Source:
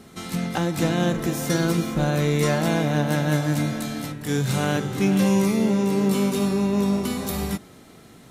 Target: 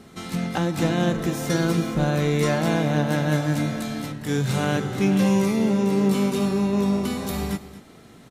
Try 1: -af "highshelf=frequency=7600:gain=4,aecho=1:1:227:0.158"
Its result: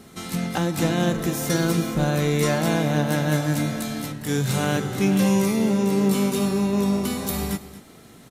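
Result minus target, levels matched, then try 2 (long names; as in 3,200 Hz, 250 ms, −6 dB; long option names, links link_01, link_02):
8,000 Hz band +4.5 dB
-af "highshelf=frequency=7600:gain=-6,aecho=1:1:227:0.158"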